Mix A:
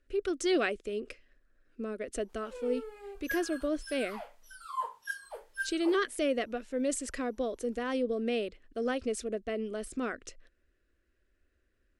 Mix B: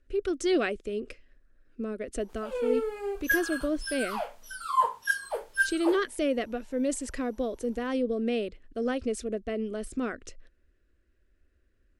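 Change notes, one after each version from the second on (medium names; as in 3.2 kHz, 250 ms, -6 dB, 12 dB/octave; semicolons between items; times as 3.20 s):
background +10.0 dB; master: add bass shelf 290 Hz +7 dB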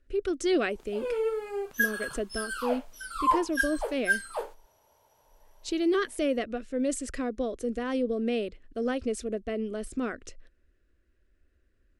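background: entry -1.50 s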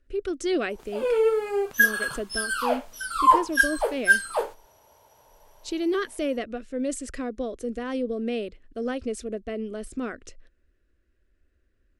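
background +7.5 dB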